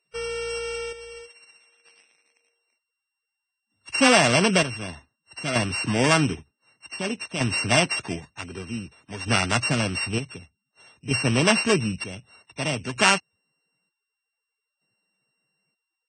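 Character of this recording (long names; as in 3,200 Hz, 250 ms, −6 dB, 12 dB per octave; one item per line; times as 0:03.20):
a buzz of ramps at a fixed pitch in blocks of 16 samples
chopped level 0.54 Hz, depth 60%, duty 50%
Ogg Vorbis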